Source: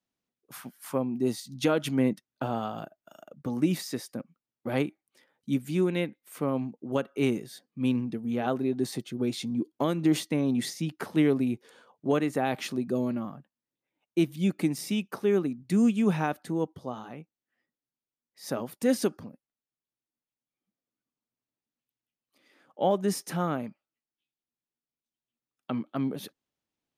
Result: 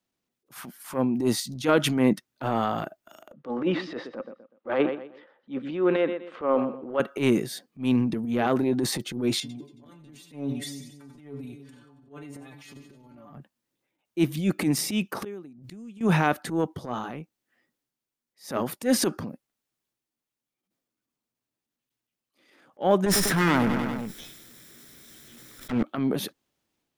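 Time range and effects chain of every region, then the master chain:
0:03.33–0:07.00: loudspeaker in its box 320–3,100 Hz, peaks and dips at 520 Hz +7 dB, 1,200 Hz +4 dB, 2,300 Hz −6 dB + repeating echo 123 ms, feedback 31%, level −16 dB
0:09.40–0:13.33: volume swells 551 ms + stiff-string resonator 140 Hz, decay 0.23 s, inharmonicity 0.002 + echo with a time of its own for lows and highs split 360 Hz, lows 293 ms, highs 91 ms, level −13.5 dB
0:15.22–0:16.01: upward compression, threshold −34 dBFS + gate with flip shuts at −24 dBFS, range −24 dB
0:23.06–0:25.83: lower of the sound and its delayed copy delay 0.54 ms + repeating echo 97 ms, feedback 42%, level −14.5 dB + envelope flattener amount 70%
whole clip: dynamic equaliser 1,400 Hz, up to +4 dB, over −45 dBFS, Q 0.94; transient designer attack −12 dB, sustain +5 dB; parametric band 350 Hz +2.5 dB 0.24 octaves; level +5 dB

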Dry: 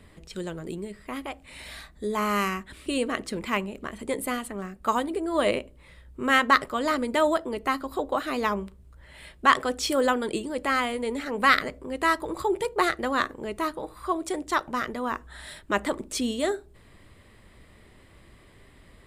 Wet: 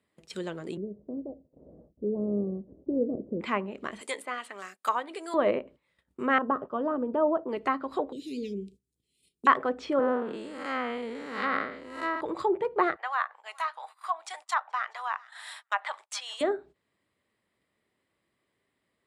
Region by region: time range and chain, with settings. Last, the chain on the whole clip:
0:00.77–0:03.41: variable-slope delta modulation 16 kbit/s + Chebyshev low-pass filter 560 Hz, order 4 + spectral tilt −1.5 dB per octave
0:04.01–0:05.34: high-pass filter 680 Hz 6 dB per octave + spectral tilt +3 dB per octave
0:06.38–0:07.49: de-essing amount 70% + downward expander −38 dBFS + moving average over 21 samples
0:08.12–0:09.47: Chebyshev band-stop filter 440–2,400 Hz, order 4 + parametric band 2,000 Hz −14.5 dB 2 octaves + one half of a high-frequency compander encoder only
0:09.99–0:12.21: spectrum smeared in time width 223 ms + multiband upward and downward expander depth 70%
0:12.96–0:16.41: elliptic high-pass filter 760 Hz, stop band 80 dB + repeating echo 425 ms, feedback 28%, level −23.5 dB
whole clip: treble cut that deepens with the level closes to 1,500 Hz, closed at −24 dBFS; noise gate −46 dBFS, range −21 dB; Bessel high-pass filter 210 Hz, order 2

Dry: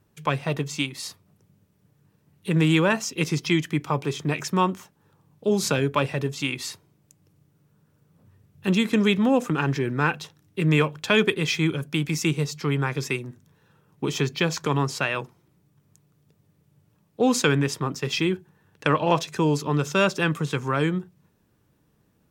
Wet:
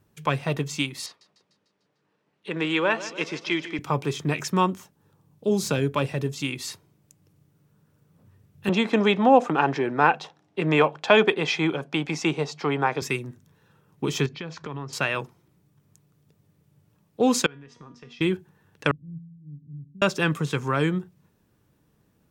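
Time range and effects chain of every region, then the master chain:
0:01.06–0:03.79: band-pass filter 380–4,000 Hz + repeating echo 149 ms, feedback 58%, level −15 dB
0:04.66–0:06.68: de-essing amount 50% + parametric band 1,600 Hz −4 dB 2.6 octaves
0:08.69–0:13.02: band-pass filter 210–5,100 Hz + parametric band 750 Hz +12.5 dB 0.86 octaves
0:14.26–0:14.93: downward compressor 3 to 1, threshold −33 dBFS + high-frequency loss of the air 160 metres
0:17.46–0:18.21: downward compressor 10 to 1, threshold −28 dBFS + high-frequency loss of the air 160 metres + tuned comb filter 240 Hz, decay 0.4 s, mix 80%
0:18.91–0:20.02: inverse Chebyshev low-pass filter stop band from 650 Hz, stop band 60 dB + volume swells 142 ms + tuned comb filter 56 Hz, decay 1.4 s, harmonics odd, mix 80%
whole clip: no processing

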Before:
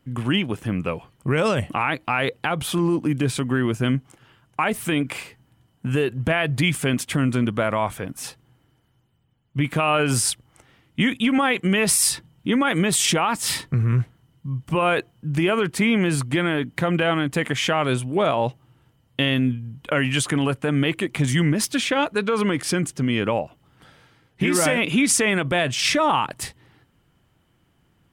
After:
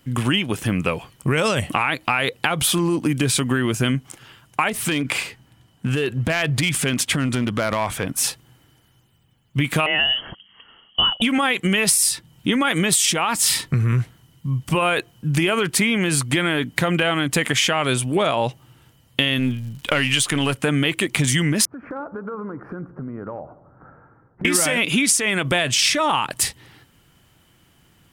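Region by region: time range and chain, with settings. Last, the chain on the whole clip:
0:04.69–0:08.16: high-shelf EQ 7,100 Hz −9 dB + downward compressor 4 to 1, threshold −22 dBFS + hard clipping −19.5 dBFS
0:09.86–0:11.22: phaser with its sweep stopped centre 310 Hz, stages 4 + voice inversion scrambler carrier 3,200 Hz
0:19.38–0:20.55: gain on one half-wave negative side −3 dB + parametric band 3,200 Hz +4 dB 0.82 octaves + surface crackle 180 per second −48 dBFS
0:21.65–0:24.45: elliptic low-pass filter 1,400 Hz, stop band 60 dB + downward compressor 5 to 1, threshold −35 dBFS + delay with a low-pass on its return 90 ms, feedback 59%, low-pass 1,100 Hz, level −15.5 dB
whole clip: high-shelf EQ 2,300 Hz +10 dB; downward compressor 6 to 1, threshold −21 dBFS; level +5 dB

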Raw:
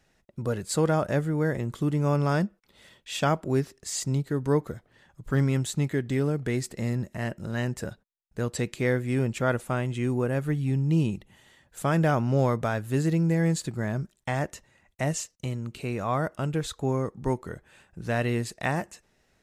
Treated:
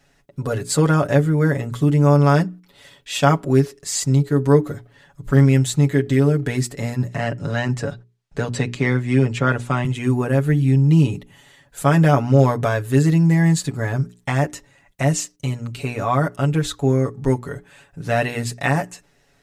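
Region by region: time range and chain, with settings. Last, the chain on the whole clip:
0:07.08–0:09.85: low-pass filter 6,700 Hz + multiband upward and downward compressor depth 40%
whole clip: mains-hum notches 60/120/180/240/300/360/420 Hz; comb filter 7.1 ms, depth 85%; level +5.5 dB

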